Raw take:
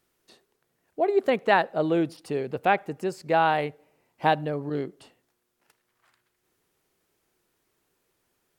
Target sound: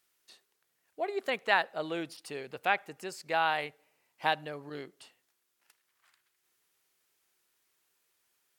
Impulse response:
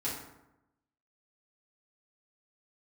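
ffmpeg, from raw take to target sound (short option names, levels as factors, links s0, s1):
-af "tiltshelf=f=810:g=-8.5,volume=0.422"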